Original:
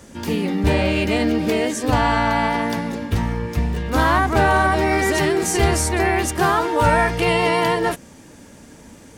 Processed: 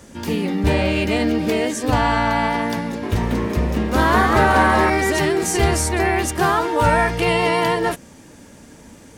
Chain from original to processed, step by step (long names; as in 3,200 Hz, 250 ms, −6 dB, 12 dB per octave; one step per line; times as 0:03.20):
0:02.84–0:04.90: echo with shifted repeats 190 ms, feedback 41%, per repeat +150 Hz, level −3.5 dB